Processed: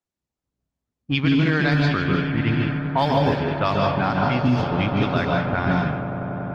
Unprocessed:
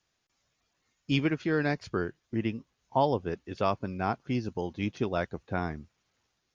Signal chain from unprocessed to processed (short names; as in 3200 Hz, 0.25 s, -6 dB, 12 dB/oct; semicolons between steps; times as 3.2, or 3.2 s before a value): G.711 law mismatch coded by A; bell 1600 Hz +6.5 dB 1.8 oct; swelling echo 95 ms, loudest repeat 8, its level -17.5 dB; on a send at -1.5 dB: reverb RT60 0.55 s, pre-delay 0.14 s; on the sum: low-pass opened by the level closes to 440 Hz, open at -17 dBFS; fifteen-band EQ 100 Hz +5 dB, 400 Hz -6 dB, 4000 Hz +11 dB; maximiser +14.5 dB; gain -9 dB; Opus 24 kbps 48000 Hz